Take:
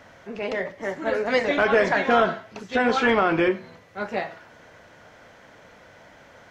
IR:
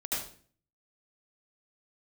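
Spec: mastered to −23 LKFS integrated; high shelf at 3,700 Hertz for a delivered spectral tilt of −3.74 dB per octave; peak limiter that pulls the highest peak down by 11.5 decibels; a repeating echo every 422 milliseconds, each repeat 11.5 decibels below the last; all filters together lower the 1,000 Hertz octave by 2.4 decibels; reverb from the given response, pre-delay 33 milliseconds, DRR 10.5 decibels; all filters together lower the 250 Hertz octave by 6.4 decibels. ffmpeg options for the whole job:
-filter_complex "[0:a]equalizer=frequency=250:width_type=o:gain=-8.5,equalizer=frequency=1000:width_type=o:gain=-3.5,highshelf=frequency=3700:gain=5.5,alimiter=limit=-20dB:level=0:latency=1,aecho=1:1:422|844|1266:0.266|0.0718|0.0194,asplit=2[link_01][link_02];[1:a]atrim=start_sample=2205,adelay=33[link_03];[link_02][link_03]afir=irnorm=-1:irlink=0,volume=-15.5dB[link_04];[link_01][link_04]amix=inputs=2:normalize=0,volume=7dB"

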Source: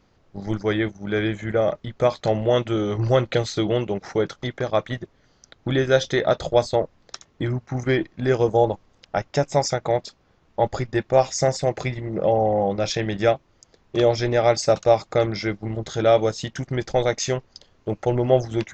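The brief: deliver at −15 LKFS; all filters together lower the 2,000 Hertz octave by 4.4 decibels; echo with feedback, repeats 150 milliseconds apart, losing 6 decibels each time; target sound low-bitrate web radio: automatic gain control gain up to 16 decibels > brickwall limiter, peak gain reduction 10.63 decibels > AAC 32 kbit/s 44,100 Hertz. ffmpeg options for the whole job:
ffmpeg -i in.wav -af "equalizer=frequency=2000:width_type=o:gain=-5.5,aecho=1:1:150|300|450|600|750|900:0.501|0.251|0.125|0.0626|0.0313|0.0157,dynaudnorm=maxgain=16dB,alimiter=limit=-13.5dB:level=0:latency=1,volume=9.5dB" -ar 44100 -c:a aac -b:a 32k out.aac

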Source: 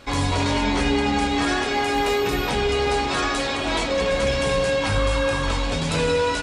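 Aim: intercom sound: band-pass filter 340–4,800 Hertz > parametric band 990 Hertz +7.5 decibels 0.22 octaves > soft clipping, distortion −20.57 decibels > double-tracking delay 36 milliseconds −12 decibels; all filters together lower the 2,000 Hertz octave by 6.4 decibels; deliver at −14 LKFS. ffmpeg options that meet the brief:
ffmpeg -i in.wav -filter_complex "[0:a]highpass=340,lowpass=4800,equalizer=frequency=990:width_type=o:width=0.22:gain=7.5,equalizer=frequency=2000:width_type=o:gain=-8.5,asoftclip=threshold=-16.5dB,asplit=2[link_01][link_02];[link_02]adelay=36,volume=-12dB[link_03];[link_01][link_03]amix=inputs=2:normalize=0,volume=11.5dB" out.wav

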